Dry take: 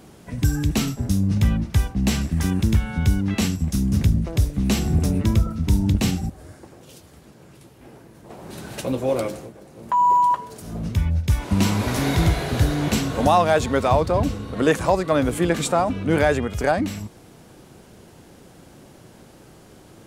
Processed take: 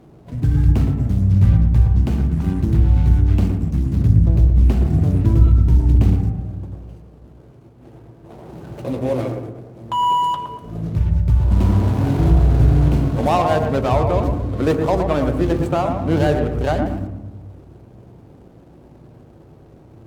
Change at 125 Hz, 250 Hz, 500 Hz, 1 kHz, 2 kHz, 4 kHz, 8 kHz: +6.5 dB, +1.5 dB, +1.0 dB, -0.5 dB, -5.0 dB, -4.5 dB, under -10 dB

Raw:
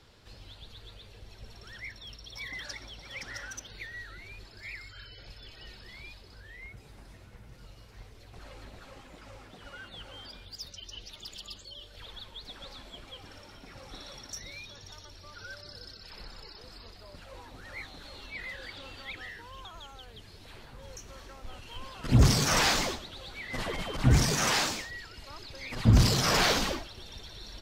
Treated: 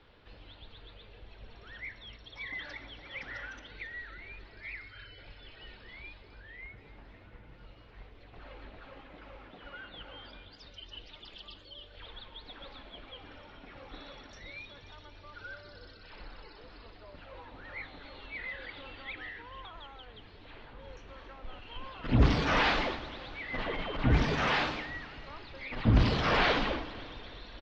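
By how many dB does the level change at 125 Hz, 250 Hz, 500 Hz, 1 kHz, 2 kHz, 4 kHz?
-4.5 dB, -1.5 dB, 0.0 dB, 0.0 dB, 0.0 dB, -5.5 dB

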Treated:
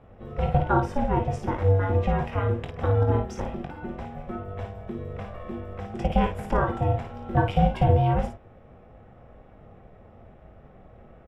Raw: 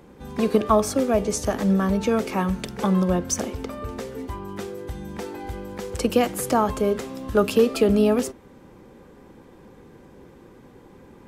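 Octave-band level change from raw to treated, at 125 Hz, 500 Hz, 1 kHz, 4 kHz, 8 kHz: +6.0 dB, -6.0 dB, +0.5 dB, -10.0 dB, under -20 dB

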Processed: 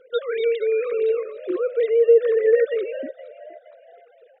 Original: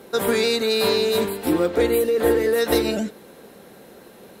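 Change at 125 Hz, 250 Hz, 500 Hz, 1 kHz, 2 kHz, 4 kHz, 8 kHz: under -30 dB, -13.0 dB, +1.5 dB, under -10 dB, -6.5 dB, under -15 dB, under -40 dB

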